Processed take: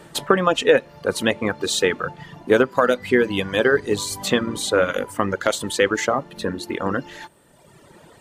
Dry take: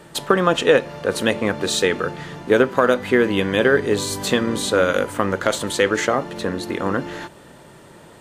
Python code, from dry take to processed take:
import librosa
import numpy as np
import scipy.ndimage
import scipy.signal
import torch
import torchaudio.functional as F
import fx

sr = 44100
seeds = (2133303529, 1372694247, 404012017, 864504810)

y = fx.dereverb_blind(x, sr, rt60_s=1.4)